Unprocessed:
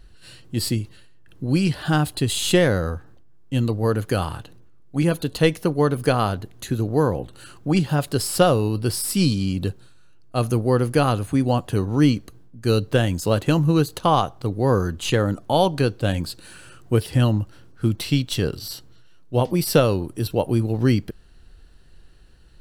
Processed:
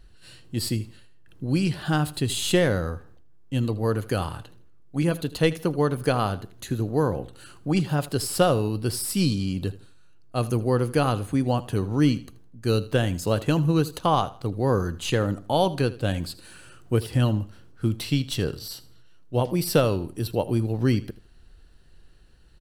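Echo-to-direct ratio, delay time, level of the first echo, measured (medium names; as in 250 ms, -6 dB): -17.5 dB, 80 ms, -18.0 dB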